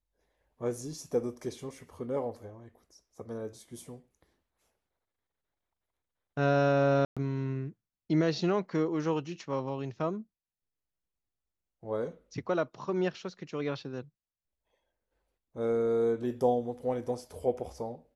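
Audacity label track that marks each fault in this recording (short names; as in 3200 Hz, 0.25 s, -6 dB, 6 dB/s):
7.050000	7.170000	gap 0.116 s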